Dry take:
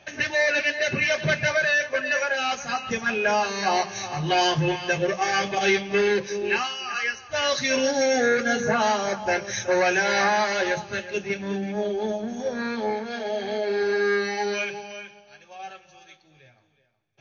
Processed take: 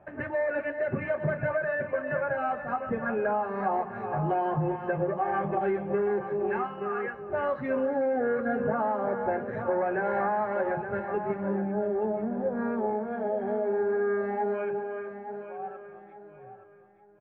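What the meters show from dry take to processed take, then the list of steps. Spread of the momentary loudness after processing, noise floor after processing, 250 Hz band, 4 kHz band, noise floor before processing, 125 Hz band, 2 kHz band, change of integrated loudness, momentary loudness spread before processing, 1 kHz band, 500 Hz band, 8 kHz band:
6 LU, -50 dBFS, -2.0 dB, under -30 dB, -57 dBFS, -2.0 dB, -12.0 dB, -5.5 dB, 8 LU, -3.5 dB, -2.5 dB, n/a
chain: LPF 1300 Hz 24 dB/oct; feedback echo 0.873 s, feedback 31%, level -11.5 dB; compressor, threshold -24 dBFS, peak gain reduction 6.5 dB

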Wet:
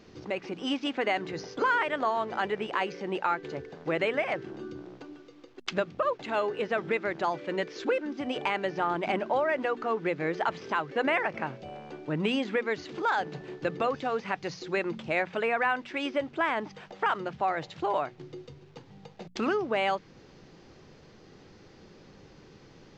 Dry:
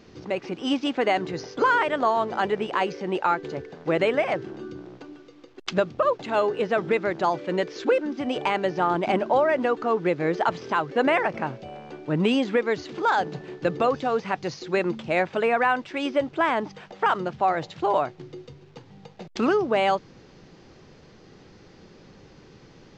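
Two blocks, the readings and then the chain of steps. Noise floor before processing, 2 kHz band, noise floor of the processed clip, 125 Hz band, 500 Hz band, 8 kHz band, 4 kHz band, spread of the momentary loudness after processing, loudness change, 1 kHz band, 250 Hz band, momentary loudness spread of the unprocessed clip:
-51 dBFS, -3.0 dB, -54 dBFS, -6.5 dB, -6.5 dB, n/a, -3.5 dB, 12 LU, -5.5 dB, -5.5 dB, -6.5 dB, 11 LU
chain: notches 60/120/180/240 Hz; dynamic EQ 2100 Hz, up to +5 dB, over -39 dBFS, Q 1; in parallel at +0.5 dB: compressor, threshold -30 dBFS, peak gain reduction 14.5 dB; on the sum: gain -9 dB

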